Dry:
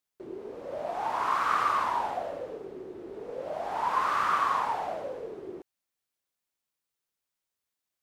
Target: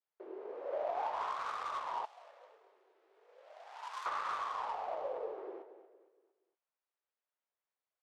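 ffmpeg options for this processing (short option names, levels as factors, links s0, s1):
-filter_complex "[0:a]highpass=f=450:w=0.5412,highpass=f=450:w=1.3066,asplit=2[s0][s1];[s1]adelay=18,volume=0.224[s2];[s0][s2]amix=inputs=2:normalize=0,aecho=1:1:232|464|696|928:0.237|0.0972|0.0399|0.0163,adynamicsmooth=sensitivity=3.5:basefreq=2000,asettb=1/sr,asplit=3[s3][s4][s5];[s3]atrim=end=2.054[s6];[s4]atrim=start=2.05:end=4.06,asetpts=PTS-STARTPTS,afade=t=in:d=0.004:c=qsin,afade=t=out:st=2.006:d=0.004:c=qsin,aderivative[s7];[s5]atrim=start=4.056[s8];[s6][s7]acrossfade=d=0.004:c1=hsin:c2=qsin[s9];[s9][s8]acrossfade=d=0.004:c1=qsin:c2=hsin,alimiter=level_in=1.26:limit=0.0631:level=0:latency=1:release=453,volume=0.794,adynamicequalizer=threshold=0.00398:dfrequency=1500:dqfactor=1:tfrequency=1500:tqfactor=1:attack=5:release=100:ratio=0.375:range=3.5:mode=cutabove:tftype=bell"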